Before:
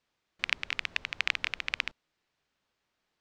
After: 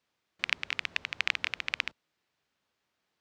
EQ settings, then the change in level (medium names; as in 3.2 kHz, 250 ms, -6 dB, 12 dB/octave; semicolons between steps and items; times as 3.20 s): high-pass 70 Hz; 0.0 dB